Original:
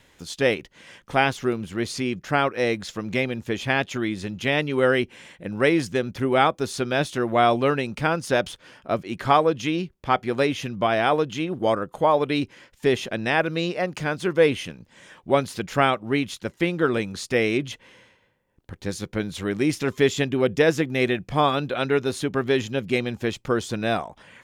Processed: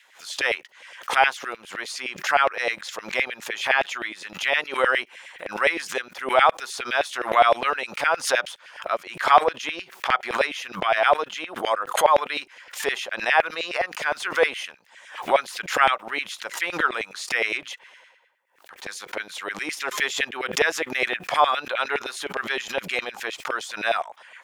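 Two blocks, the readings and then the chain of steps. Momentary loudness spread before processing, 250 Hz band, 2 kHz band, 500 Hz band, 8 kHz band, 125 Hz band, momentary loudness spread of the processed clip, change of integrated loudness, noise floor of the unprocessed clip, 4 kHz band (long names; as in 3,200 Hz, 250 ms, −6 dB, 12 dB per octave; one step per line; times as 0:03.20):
9 LU, −14.5 dB, +4.0 dB, −3.5 dB, +3.5 dB, −21.0 dB, 13 LU, 0.0 dB, −61 dBFS, +2.0 dB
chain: auto-filter high-pass saw down 9.7 Hz 570–2,400 Hz
background raised ahead of every attack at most 130 dB per second
level −1 dB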